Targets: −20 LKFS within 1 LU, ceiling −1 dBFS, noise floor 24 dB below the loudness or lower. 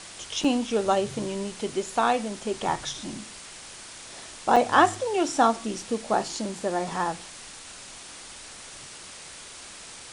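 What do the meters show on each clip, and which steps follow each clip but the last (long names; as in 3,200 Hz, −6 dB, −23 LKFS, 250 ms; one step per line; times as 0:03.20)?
number of dropouts 2; longest dropout 5.3 ms; background noise floor −44 dBFS; target noise floor −50 dBFS; integrated loudness −26.0 LKFS; sample peak −4.5 dBFS; target loudness −20.0 LKFS
→ repair the gap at 0:00.44/0:04.56, 5.3 ms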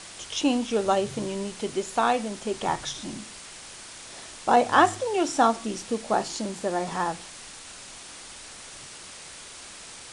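number of dropouts 0; background noise floor −44 dBFS; target noise floor −50 dBFS
→ noise reduction from a noise print 6 dB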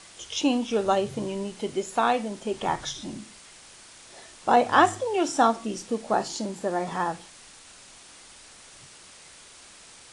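background noise floor −50 dBFS; integrated loudness −26.0 LKFS; sample peak −4.5 dBFS; target loudness −20.0 LKFS
→ level +6 dB
brickwall limiter −1 dBFS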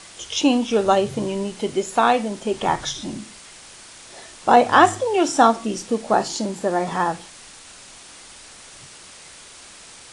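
integrated loudness −20.0 LKFS; sample peak −1.0 dBFS; background noise floor −44 dBFS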